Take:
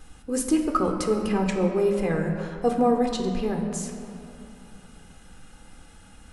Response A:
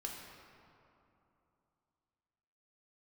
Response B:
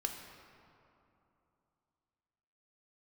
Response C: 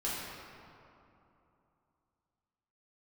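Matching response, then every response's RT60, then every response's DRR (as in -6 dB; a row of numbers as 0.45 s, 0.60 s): B; 2.9 s, 2.9 s, 2.9 s; -1.0 dB, 3.0 dB, -8.5 dB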